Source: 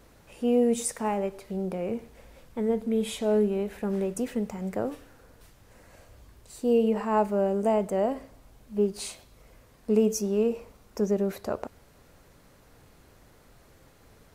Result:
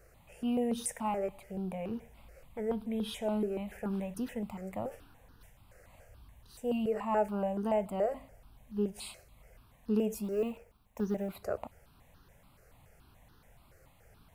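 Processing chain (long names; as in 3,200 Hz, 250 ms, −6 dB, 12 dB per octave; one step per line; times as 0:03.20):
0:10.24–0:11.35: mu-law and A-law mismatch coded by A
step-sequenced phaser 7 Hz 950–2,200 Hz
level −2.5 dB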